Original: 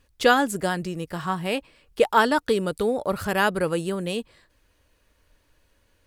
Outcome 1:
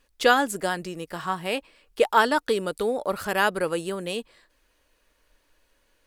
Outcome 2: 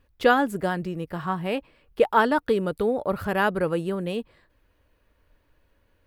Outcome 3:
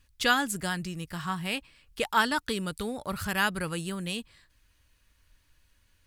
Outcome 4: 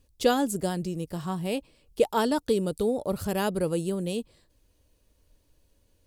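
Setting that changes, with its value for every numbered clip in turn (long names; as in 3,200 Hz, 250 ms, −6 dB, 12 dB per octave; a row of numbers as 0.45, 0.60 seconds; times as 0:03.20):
parametric band, centre frequency: 94, 7,300, 490, 1,600 Hertz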